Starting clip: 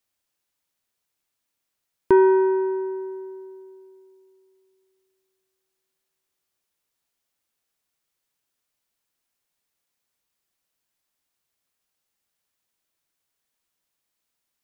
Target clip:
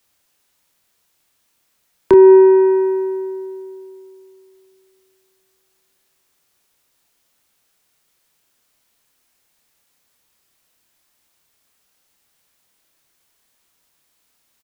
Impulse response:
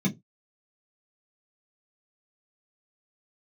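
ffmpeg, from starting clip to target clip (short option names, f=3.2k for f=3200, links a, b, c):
-filter_complex "[0:a]acrossover=split=180|340|880[a][b][c][d];[d]acompressor=threshold=-40dB:ratio=6[e];[a][b][c][e]amix=inputs=4:normalize=0,asplit=2[f][g];[g]adelay=28,volume=-6dB[h];[f][h]amix=inputs=2:normalize=0,alimiter=level_in=14.5dB:limit=-1dB:release=50:level=0:latency=1,volume=-1dB"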